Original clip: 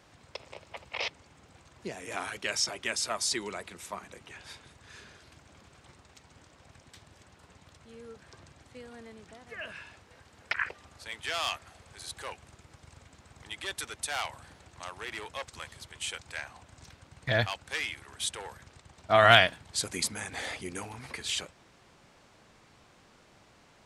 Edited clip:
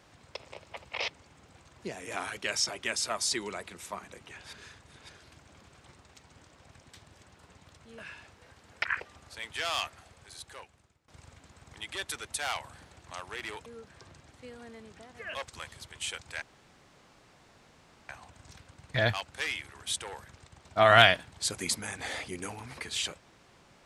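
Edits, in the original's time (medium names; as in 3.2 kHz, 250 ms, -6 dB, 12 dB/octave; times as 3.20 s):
4.53–5.09 s: reverse
7.98–9.67 s: move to 15.35 s
11.56–12.77 s: fade out, to -23.5 dB
16.42 s: insert room tone 1.67 s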